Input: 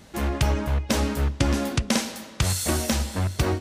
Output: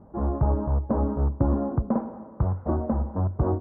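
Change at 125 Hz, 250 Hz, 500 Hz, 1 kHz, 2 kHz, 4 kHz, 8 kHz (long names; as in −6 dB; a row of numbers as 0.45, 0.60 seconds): 0.0 dB, 0.0 dB, 0.0 dB, −1.5 dB, below −20 dB, below −40 dB, below −40 dB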